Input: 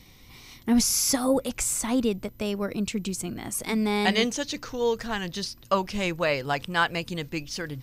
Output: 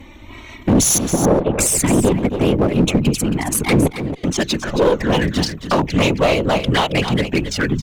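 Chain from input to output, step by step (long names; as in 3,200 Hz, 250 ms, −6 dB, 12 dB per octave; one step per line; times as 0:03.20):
adaptive Wiener filter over 9 samples
parametric band 85 Hz −9 dB 0.5 octaves
downward compressor 1.5 to 1, threshold −31 dBFS, peak gain reduction 5 dB
0:03.70–0:04.24: gate with flip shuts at −20 dBFS, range −33 dB
random phases in short frames
flanger swept by the level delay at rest 3.9 ms, full sweep at −27 dBFS
asymmetric clip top −32.5 dBFS, bottom −19 dBFS
0:00.98–0:01.59: high-frequency loss of the air 450 metres
on a send: single-tap delay 272 ms −10.5 dB
on the sum: boost into a limiter +21.5 dB
level −3 dB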